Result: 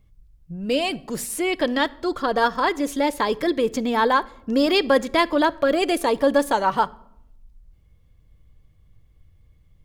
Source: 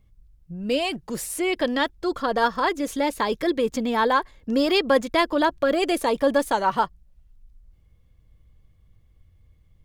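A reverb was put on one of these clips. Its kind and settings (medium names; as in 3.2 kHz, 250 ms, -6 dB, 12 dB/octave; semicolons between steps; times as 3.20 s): simulated room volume 2200 m³, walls furnished, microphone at 0.36 m; trim +1.5 dB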